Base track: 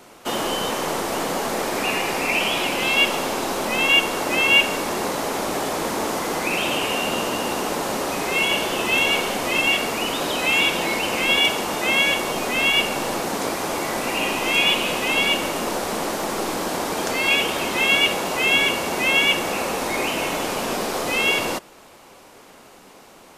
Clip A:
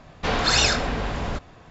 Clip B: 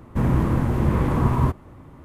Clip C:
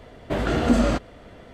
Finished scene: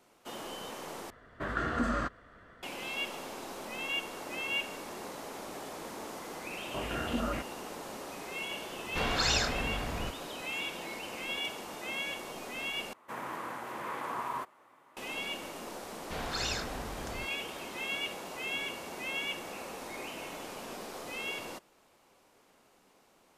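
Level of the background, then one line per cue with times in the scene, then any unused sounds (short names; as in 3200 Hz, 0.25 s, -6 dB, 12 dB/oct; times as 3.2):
base track -18 dB
1.1 replace with C -13.5 dB + band shelf 1400 Hz +12 dB 1 oct
6.44 add C -15.5 dB + stepped low-pass 7.9 Hz 910–3200 Hz
8.72 add A -9 dB
12.93 replace with B -5 dB + HPF 810 Hz
15.87 add A -15 dB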